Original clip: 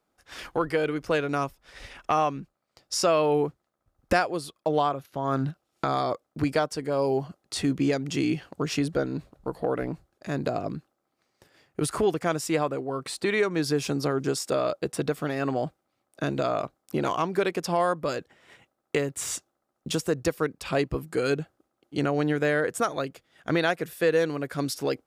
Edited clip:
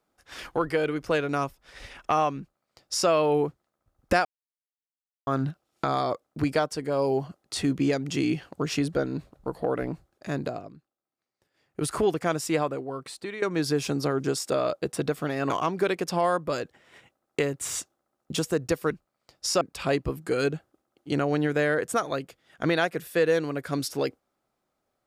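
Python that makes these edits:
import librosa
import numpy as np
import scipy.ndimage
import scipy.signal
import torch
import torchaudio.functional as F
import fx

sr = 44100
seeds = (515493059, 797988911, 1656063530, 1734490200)

y = fx.edit(x, sr, fx.duplicate(start_s=2.39, length_s=0.7, to_s=20.47),
    fx.silence(start_s=4.25, length_s=1.02),
    fx.fade_down_up(start_s=10.33, length_s=1.58, db=-15.0, fade_s=0.37),
    fx.fade_out_to(start_s=12.59, length_s=0.83, floor_db=-14.0),
    fx.cut(start_s=15.5, length_s=1.56), tone=tone)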